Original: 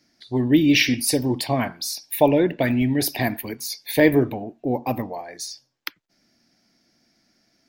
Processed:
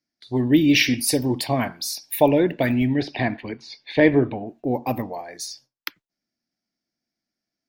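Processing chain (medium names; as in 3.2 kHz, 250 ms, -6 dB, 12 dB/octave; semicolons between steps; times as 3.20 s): 2.87–4.46 s: low-pass 3.9 kHz 24 dB/octave; gate with hold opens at -37 dBFS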